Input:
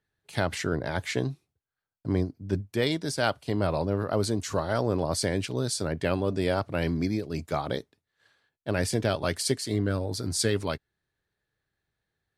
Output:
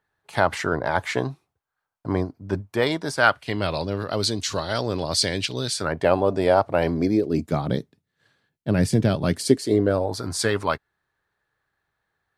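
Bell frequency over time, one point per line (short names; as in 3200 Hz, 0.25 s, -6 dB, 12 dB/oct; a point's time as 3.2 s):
bell +13 dB 1.7 oct
3.1 s 980 Hz
3.76 s 3900 Hz
5.6 s 3900 Hz
6 s 760 Hz
6.83 s 760 Hz
7.64 s 170 Hz
9.24 s 170 Hz
10.23 s 1100 Hz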